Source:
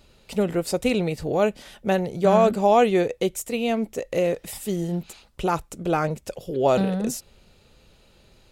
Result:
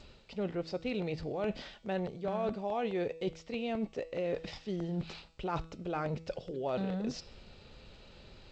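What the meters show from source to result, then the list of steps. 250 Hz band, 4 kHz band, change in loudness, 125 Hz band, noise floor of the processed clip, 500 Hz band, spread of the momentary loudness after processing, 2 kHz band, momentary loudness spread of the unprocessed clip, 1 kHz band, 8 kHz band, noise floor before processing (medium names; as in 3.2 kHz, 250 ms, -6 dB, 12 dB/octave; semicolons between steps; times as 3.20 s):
-12.0 dB, -10.5 dB, -13.5 dB, -10.5 dB, -57 dBFS, -13.5 dB, 20 LU, -12.5 dB, 12 LU, -15.5 dB, under -20 dB, -57 dBFS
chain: reverse; compression 5:1, threshold -35 dBFS, peak gain reduction 19.5 dB; reverse; steep low-pass 5.3 kHz 48 dB/octave; de-hum 162.6 Hz, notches 36; crackling interface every 0.21 s, samples 64, repeat, from 0.81 s; trim +1.5 dB; G.722 64 kbps 16 kHz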